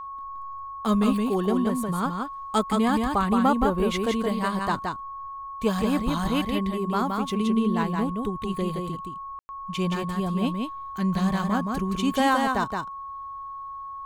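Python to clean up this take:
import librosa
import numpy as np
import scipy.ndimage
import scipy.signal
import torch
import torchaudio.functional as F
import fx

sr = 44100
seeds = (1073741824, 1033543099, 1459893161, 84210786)

y = fx.notch(x, sr, hz=1100.0, q=30.0)
y = fx.fix_ambience(y, sr, seeds[0], print_start_s=12.89, print_end_s=13.39, start_s=9.39, end_s=9.49)
y = fx.fix_echo_inverse(y, sr, delay_ms=171, level_db=-4.0)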